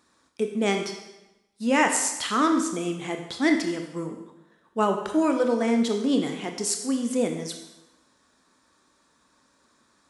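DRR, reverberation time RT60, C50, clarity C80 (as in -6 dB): 4.0 dB, 1.0 s, 6.5 dB, 8.5 dB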